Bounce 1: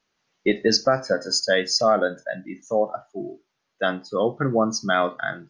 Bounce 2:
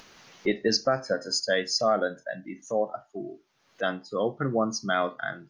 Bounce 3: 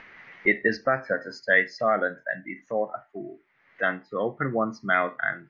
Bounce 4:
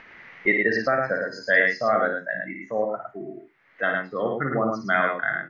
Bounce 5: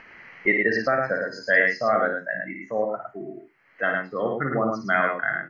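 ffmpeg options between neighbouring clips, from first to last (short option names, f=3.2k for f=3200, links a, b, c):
-af "acompressor=mode=upward:threshold=-27dB:ratio=2.5,volume=-5dB"
-af "lowpass=f=2k:t=q:w=5.6,volume=-1dB"
-af "aecho=1:1:56|109:0.562|0.631"
-af "asuperstop=centerf=3600:order=4:qfactor=5.5"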